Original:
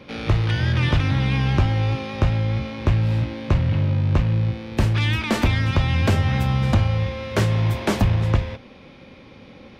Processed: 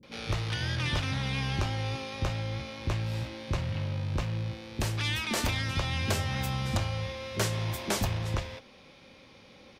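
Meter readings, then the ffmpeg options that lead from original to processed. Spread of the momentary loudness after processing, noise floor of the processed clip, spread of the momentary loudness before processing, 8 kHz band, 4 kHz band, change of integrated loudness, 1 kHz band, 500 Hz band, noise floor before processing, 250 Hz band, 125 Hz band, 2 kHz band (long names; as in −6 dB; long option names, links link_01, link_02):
6 LU, −55 dBFS, 5 LU, +2.5 dB, −3.5 dB, −10.5 dB, −7.5 dB, −9.0 dB, −45 dBFS, −12.0 dB, −12.5 dB, −6.5 dB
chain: -filter_complex "[0:a]bass=frequency=250:gain=-5,treble=frequency=4000:gain=11,acrossover=split=310[link_01][link_02];[link_02]adelay=30[link_03];[link_01][link_03]amix=inputs=2:normalize=0,volume=-7.5dB"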